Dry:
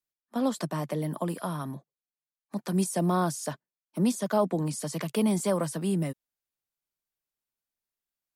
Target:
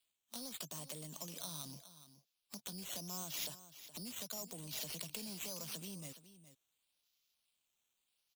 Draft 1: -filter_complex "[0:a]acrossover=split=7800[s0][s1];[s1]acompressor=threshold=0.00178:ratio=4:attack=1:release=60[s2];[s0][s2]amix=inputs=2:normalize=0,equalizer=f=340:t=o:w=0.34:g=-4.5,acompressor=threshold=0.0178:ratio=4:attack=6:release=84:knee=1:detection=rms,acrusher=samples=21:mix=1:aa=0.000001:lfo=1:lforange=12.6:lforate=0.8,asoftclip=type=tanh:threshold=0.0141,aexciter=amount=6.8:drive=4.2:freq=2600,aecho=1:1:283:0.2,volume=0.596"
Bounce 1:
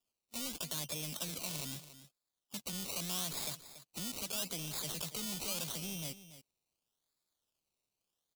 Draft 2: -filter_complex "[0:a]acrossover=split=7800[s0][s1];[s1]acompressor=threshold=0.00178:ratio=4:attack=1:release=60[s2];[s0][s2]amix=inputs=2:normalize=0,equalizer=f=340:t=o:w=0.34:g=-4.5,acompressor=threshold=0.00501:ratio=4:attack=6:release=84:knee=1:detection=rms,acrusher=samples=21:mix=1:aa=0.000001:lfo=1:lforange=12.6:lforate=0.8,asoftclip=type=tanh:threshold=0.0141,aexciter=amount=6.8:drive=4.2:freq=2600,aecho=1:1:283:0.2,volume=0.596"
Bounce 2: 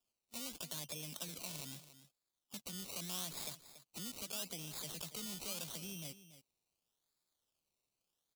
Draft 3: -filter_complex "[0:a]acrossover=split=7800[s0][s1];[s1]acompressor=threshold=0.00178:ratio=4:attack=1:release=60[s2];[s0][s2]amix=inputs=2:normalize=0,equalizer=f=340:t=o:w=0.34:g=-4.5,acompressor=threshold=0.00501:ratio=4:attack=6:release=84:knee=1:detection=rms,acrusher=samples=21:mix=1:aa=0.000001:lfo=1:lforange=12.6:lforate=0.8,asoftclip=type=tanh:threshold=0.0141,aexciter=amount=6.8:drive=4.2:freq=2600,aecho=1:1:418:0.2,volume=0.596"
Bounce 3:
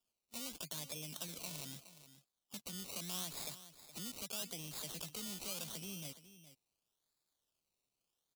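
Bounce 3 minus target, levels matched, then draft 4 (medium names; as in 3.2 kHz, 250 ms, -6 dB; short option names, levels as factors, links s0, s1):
decimation with a swept rate: distortion +6 dB
-filter_complex "[0:a]acrossover=split=7800[s0][s1];[s1]acompressor=threshold=0.00178:ratio=4:attack=1:release=60[s2];[s0][s2]amix=inputs=2:normalize=0,equalizer=f=340:t=o:w=0.34:g=-4.5,acompressor=threshold=0.00501:ratio=4:attack=6:release=84:knee=1:detection=rms,acrusher=samples=7:mix=1:aa=0.000001:lfo=1:lforange=4.2:lforate=0.8,asoftclip=type=tanh:threshold=0.0141,aexciter=amount=6.8:drive=4.2:freq=2600,aecho=1:1:418:0.2,volume=0.596"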